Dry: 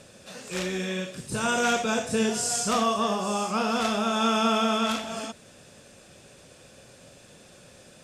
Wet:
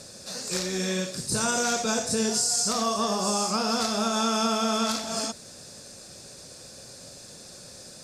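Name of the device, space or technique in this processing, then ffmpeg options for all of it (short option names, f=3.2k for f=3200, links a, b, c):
over-bright horn tweeter: -af "highshelf=f=3.7k:t=q:w=3:g=6,alimiter=limit=-18dB:level=0:latency=1:release=258,volume=2.5dB"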